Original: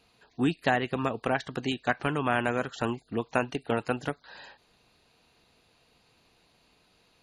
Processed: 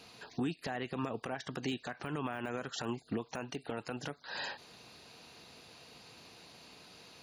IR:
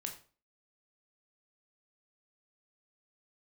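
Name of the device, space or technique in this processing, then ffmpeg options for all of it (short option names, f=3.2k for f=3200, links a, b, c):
broadcast voice chain: -filter_complex "[0:a]highpass=94,deesser=0.95,acompressor=threshold=-43dB:ratio=3,equalizer=f=5.5k:t=o:w=0.52:g=6,alimiter=level_in=11dB:limit=-24dB:level=0:latency=1:release=55,volume=-11dB,asettb=1/sr,asplit=3[a][b][c];[a]atrim=end=0.994[d];[b]atrim=start=0.99:end=1.62,asetpts=PTS-STARTPTS,afade=t=in:d=0.004:c=qsin,afade=t=out:st=0.626:d=0.004:c=qsin,bandreject=f=4.2k:w=10[e];[c]atrim=start=1.616[f];[d][e]acrossfade=d=0.004:c1=hsin:c2=qsin[g];[g][f]acrossfade=d=0.004:c1=qsin:c2=hsin,volume=9dB"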